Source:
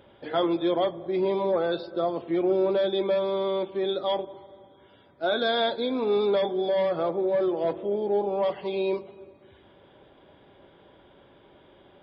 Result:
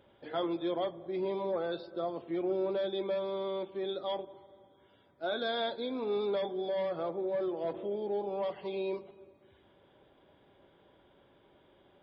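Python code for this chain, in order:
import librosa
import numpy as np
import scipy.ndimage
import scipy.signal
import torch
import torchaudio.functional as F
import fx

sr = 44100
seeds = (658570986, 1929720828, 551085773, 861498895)

y = fx.band_squash(x, sr, depth_pct=40, at=(7.74, 9.11))
y = y * librosa.db_to_amplitude(-8.5)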